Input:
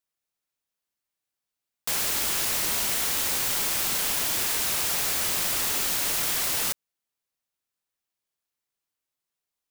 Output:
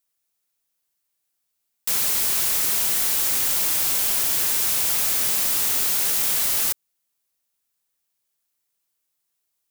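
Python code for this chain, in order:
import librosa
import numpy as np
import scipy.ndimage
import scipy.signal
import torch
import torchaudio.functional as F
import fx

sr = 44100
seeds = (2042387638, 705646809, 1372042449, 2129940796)

y = fx.high_shelf(x, sr, hz=5900.0, db=9.5)
y = 10.0 ** (-21.5 / 20.0) * np.tanh(y / 10.0 ** (-21.5 / 20.0))
y = y * 10.0 ** (3.0 / 20.0)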